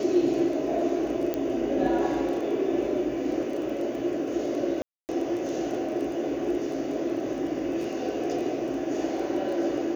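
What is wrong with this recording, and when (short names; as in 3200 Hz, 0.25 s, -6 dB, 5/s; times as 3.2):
crackle 14/s -34 dBFS
1.34 pop -15 dBFS
4.82–5.09 gap 0.269 s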